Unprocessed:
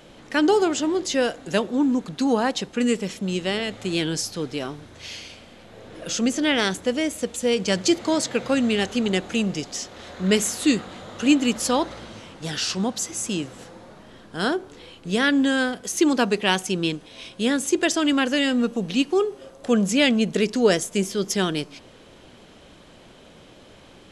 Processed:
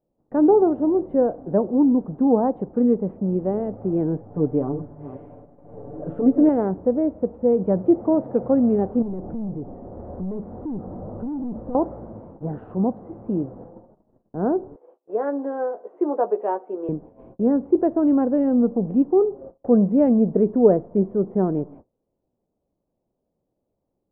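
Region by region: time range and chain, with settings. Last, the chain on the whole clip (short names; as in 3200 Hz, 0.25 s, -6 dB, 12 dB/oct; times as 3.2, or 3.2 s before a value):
4.3–6.49 reverse delay 0.29 s, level -11 dB + comb 6.9 ms, depth 90%
9.02–11.75 overloaded stage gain 25.5 dB + tilt -2 dB/oct + compressor 3:1, threshold -32 dBFS
14.76–16.89 HPF 420 Hz 24 dB/oct + doubler 14 ms -7 dB
whole clip: gate -42 dBFS, range -31 dB; inverse Chebyshev low-pass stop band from 4700 Hz, stop band 80 dB; gain +3.5 dB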